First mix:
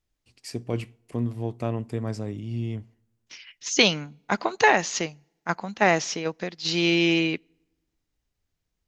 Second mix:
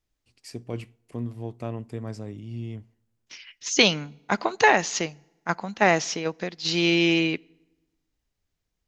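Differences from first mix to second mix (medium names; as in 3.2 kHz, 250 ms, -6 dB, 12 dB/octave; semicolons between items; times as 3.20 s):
first voice -4.5 dB; second voice: send +7.5 dB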